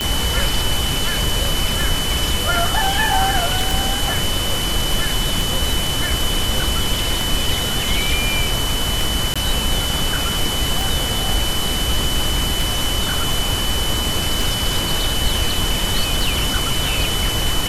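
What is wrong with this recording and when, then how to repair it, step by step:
tick 33 1/3 rpm -6 dBFS
tone 3000 Hz -23 dBFS
3.71 pop
9.34–9.36 gap 16 ms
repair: de-click; notch 3000 Hz, Q 30; interpolate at 9.34, 16 ms

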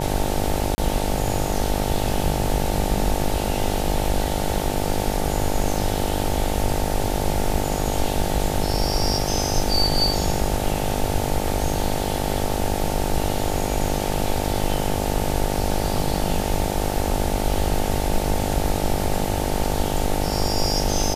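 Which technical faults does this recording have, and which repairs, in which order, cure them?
buzz 50 Hz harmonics 18 -26 dBFS
0.75–0.78 gap 30 ms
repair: de-hum 50 Hz, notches 18; interpolate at 0.75, 30 ms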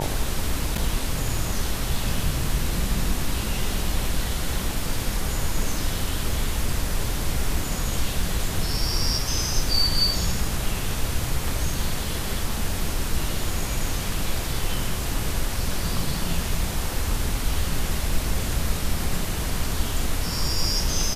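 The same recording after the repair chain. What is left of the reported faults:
none

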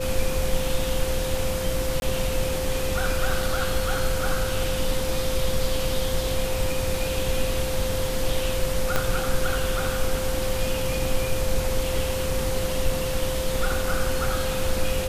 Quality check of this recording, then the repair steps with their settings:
tone 520 Hz -28 dBFS
2–2.02 gap 21 ms
8.96 pop -7 dBFS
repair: de-click; notch 520 Hz, Q 30; interpolate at 2, 21 ms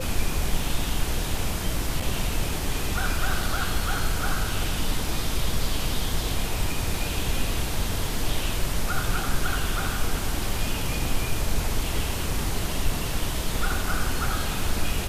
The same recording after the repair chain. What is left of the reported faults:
8.96 pop

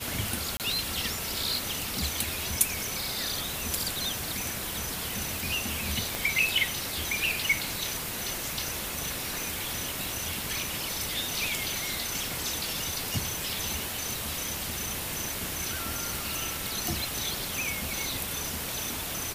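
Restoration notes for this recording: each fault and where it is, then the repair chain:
0.57–0.6 gap 28 ms
6.15 pop
16.16 pop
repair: de-click; interpolate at 0.57, 28 ms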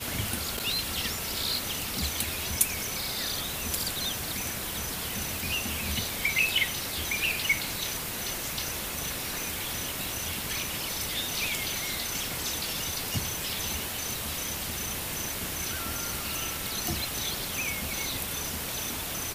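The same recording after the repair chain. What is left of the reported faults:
none

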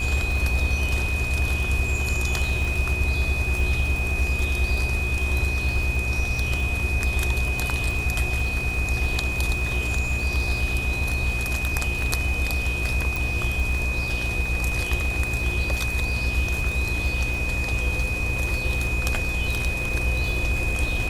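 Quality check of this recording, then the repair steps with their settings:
buzz 60 Hz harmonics 21 -29 dBFS
crackle 45/s -29 dBFS
tone 2500 Hz -27 dBFS
13.16 pop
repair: de-click; de-hum 60 Hz, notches 21; notch 2500 Hz, Q 30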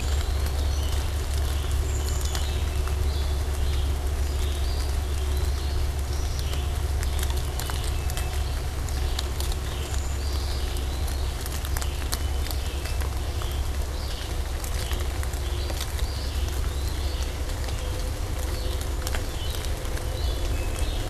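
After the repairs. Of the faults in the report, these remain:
13.16 pop

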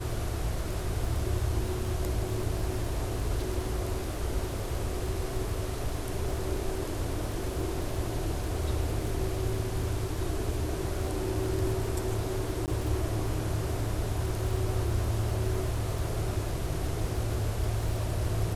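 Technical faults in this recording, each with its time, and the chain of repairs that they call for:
crackle 25/s -34 dBFS
12.66–12.68 gap 18 ms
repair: de-click; interpolate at 12.66, 18 ms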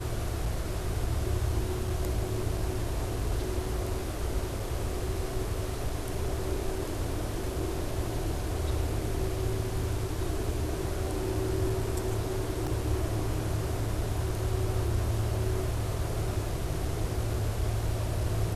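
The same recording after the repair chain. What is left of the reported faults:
none

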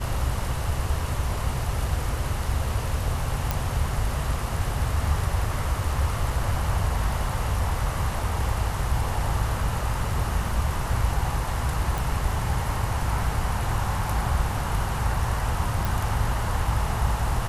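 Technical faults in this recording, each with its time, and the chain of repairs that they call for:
3.51 pop
11.98 pop
15.85 pop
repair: de-click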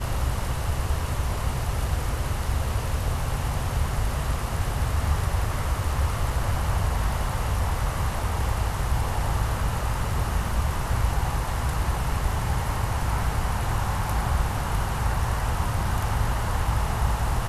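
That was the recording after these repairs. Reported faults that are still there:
none

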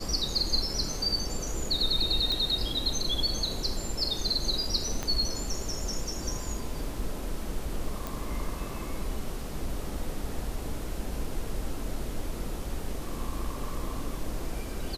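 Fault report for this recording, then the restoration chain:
2.32 pop -17 dBFS
5.03 pop -17 dBFS
8.07 pop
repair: de-click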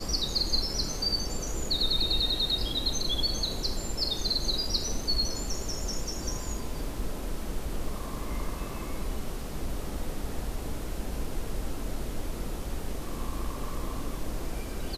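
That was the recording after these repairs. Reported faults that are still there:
5.03 pop

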